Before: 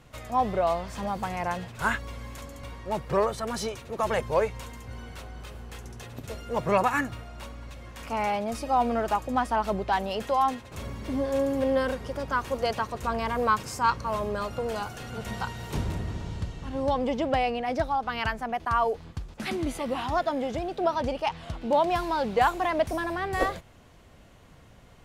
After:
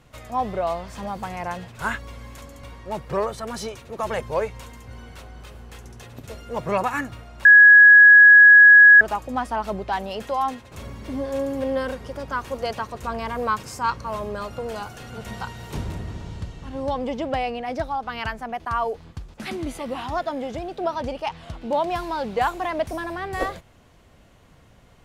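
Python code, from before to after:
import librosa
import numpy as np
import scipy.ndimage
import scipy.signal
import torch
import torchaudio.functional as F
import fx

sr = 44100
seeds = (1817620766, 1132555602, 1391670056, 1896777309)

y = fx.edit(x, sr, fx.bleep(start_s=7.45, length_s=1.56, hz=1670.0, db=-6.0), tone=tone)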